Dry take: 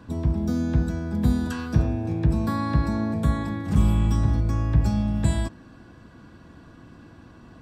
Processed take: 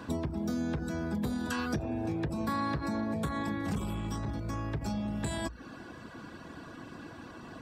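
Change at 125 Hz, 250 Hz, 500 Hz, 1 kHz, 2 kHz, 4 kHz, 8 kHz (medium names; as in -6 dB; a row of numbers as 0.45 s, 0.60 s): -14.0 dB, -7.5 dB, -4.0 dB, -3.0 dB, -1.5 dB, -2.5 dB, -3.0 dB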